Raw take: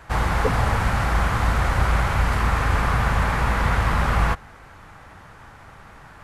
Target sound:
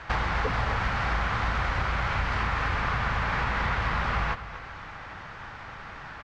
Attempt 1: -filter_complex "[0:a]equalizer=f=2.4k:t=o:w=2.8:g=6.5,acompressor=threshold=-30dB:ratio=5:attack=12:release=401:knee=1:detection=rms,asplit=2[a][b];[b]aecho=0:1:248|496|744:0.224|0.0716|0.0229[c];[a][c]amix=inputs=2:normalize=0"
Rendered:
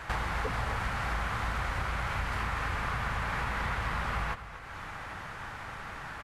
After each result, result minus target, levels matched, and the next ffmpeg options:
8000 Hz band +8.0 dB; compressor: peak gain reduction +5 dB
-filter_complex "[0:a]lowpass=f=5.9k:w=0.5412,lowpass=f=5.9k:w=1.3066,equalizer=f=2.4k:t=o:w=2.8:g=6.5,acompressor=threshold=-30dB:ratio=5:attack=12:release=401:knee=1:detection=rms,asplit=2[a][b];[b]aecho=0:1:248|496|744:0.224|0.0716|0.0229[c];[a][c]amix=inputs=2:normalize=0"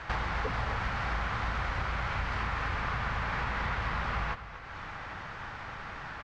compressor: peak gain reduction +5 dB
-filter_complex "[0:a]lowpass=f=5.9k:w=0.5412,lowpass=f=5.9k:w=1.3066,equalizer=f=2.4k:t=o:w=2.8:g=6.5,acompressor=threshold=-23.5dB:ratio=5:attack=12:release=401:knee=1:detection=rms,asplit=2[a][b];[b]aecho=0:1:248|496|744:0.224|0.0716|0.0229[c];[a][c]amix=inputs=2:normalize=0"

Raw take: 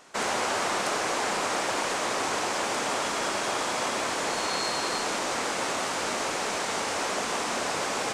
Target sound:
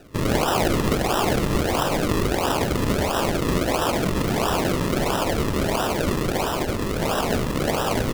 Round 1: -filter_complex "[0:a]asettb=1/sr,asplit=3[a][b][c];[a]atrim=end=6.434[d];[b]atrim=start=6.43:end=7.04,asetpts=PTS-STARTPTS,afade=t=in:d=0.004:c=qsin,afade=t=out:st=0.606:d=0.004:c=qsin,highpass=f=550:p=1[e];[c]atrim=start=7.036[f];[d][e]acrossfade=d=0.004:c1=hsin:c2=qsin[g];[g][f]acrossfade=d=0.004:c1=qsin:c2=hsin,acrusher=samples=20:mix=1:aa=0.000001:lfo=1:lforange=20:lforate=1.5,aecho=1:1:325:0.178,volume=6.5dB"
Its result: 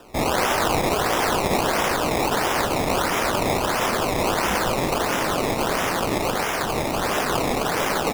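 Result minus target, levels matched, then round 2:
decimation with a swept rate: distortion -13 dB
-filter_complex "[0:a]asettb=1/sr,asplit=3[a][b][c];[a]atrim=end=6.434[d];[b]atrim=start=6.43:end=7.04,asetpts=PTS-STARTPTS,afade=t=in:d=0.004:c=qsin,afade=t=out:st=0.606:d=0.004:c=qsin,highpass=f=550:p=1[e];[c]atrim=start=7.036[f];[d][e]acrossfade=d=0.004:c1=hsin:c2=qsin[g];[g][f]acrossfade=d=0.004:c1=qsin:c2=hsin,acrusher=samples=40:mix=1:aa=0.000001:lfo=1:lforange=40:lforate=1.5,aecho=1:1:325:0.178,volume=6.5dB"

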